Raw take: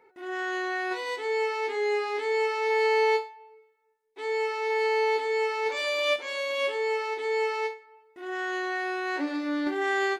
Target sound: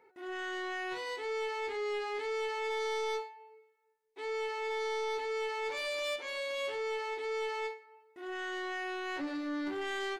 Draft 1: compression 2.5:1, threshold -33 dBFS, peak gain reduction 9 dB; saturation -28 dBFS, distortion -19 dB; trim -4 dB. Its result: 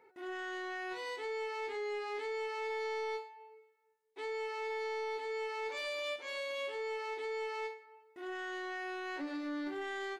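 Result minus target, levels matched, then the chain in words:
compression: peak gain reduction +9 dB
saturation -28 dBFS, distortion -10 dB; trim -4 dB

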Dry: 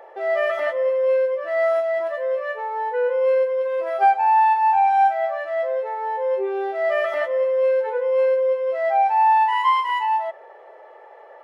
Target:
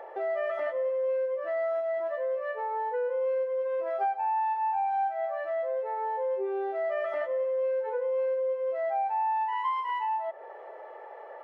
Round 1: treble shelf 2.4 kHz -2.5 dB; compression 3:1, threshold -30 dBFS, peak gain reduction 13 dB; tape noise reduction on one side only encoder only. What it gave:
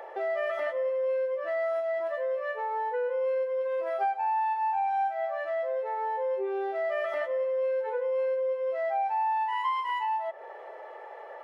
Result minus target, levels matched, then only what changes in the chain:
4 kHz band +5.0 dB
change: treble shelf 2.4 kHz -13 dB

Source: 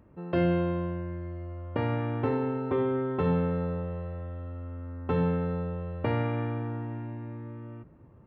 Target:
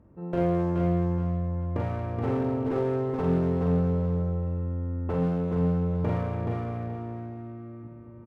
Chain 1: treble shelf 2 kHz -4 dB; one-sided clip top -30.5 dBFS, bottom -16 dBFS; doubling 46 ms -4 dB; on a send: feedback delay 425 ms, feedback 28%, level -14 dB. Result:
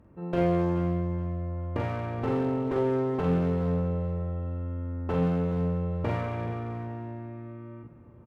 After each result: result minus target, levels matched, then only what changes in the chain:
echo-to-direct -10 dB; 4 kHz band +5.5 dB
change: feedback delay 425 ms, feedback 28%, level -4 dB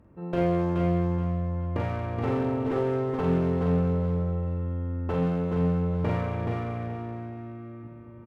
4 kHz band +5.0 dB
change: treble shelf 2 kHz -16 dB

